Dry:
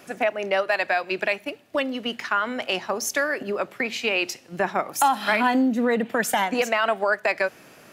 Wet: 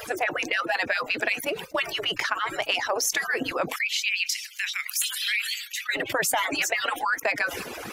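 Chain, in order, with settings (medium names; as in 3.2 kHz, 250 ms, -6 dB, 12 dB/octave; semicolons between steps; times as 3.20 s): harmonic-percussive separation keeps percussive; gate -46 dBFS, range -14 dB; 3.76–5.89 s: steep high-pass 2.1 kHz 36 dB/octave; level flattener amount 70%; trim -3 dB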